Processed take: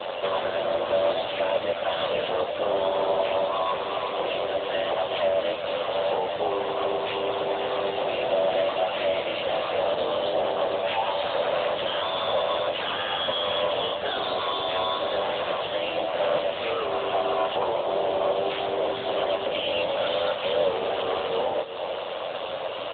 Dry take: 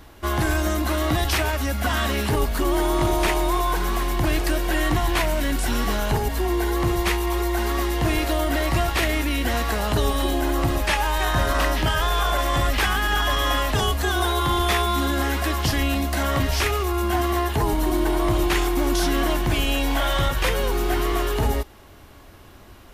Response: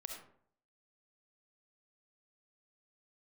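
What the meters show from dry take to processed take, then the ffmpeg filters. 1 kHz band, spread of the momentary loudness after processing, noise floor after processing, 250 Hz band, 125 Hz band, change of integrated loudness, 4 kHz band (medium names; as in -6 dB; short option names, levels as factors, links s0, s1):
-2.5 dB, 3 LU, -32 dBFS, -14.0 dB, -21.5 dB, -3.5 dB, -2.0 dB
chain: -filter_complex "[0:a]acompressor=threshold=0.02:ratio=10,aeval=exprs='val(0)*sin(2*PI*45*n/s)':c=same,aeval=exprs='0.0501*sin(PI/2*2.51*val(0)/0.0501)':c=same,acompressor=mode=upward:threshold=0.0141:ratio=2.5,aexciter=amount=5.2:drive=6.9:freq=2800,highpass=f=550:t=q:w=4.9,asplit=2[s0][s1];[s1]highpass=f=720:p=1,volume=14.1,asoftclip=type=tanh:threshold=0.596[s2];[s0][s2]amix=inputs=2:normalize=0,lowpass=f=1200:p=1,volume=0.501,aecho=1:1:368:0.266,volume=0.631" -ar 8000 -c:a libopencore_amrnb -b:a 10200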